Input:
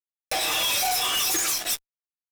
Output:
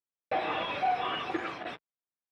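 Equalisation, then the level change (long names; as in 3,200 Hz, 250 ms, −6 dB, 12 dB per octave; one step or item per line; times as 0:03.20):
high-pass filter 130 Hz 12 dB per octave
high-frequency loss of the air 500 metres
head-to-tape spacing loss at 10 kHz 22 dB
+3.5 dB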